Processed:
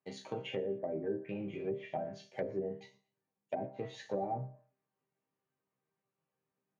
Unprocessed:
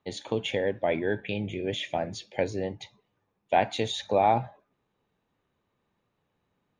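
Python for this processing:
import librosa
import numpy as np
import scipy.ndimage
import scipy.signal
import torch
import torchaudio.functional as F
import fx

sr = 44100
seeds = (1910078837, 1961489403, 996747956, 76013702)

y = fx.peak_eq(x, sr, hz=3600.0, db=-11.0, octaves=0.38)
y = fx.leveller(y, sr, passes=1)
y = scipy.signal.sosfilt(scipy.signal.butter(2, 100.0, 'highpass', fs=sr, output='sos'), y)
y = fx.resonator_bank(y, sr, root=48, chord='minor', decay_s=0.31)
y = fx.env_lowpass_down(y, sr, base_hz=440.0, full_db=-35.0)
y = fx.peak_eq(y, sr, hz=1200.0, db=-4.0, octaves=0.77, at=(2.73, 3.66))
y = fx.echo_feedback(y, sr, ms=117, feedback_pct=30, wet_db=-24.0)
y = y * 10.0 ** (4.5 / 20.0)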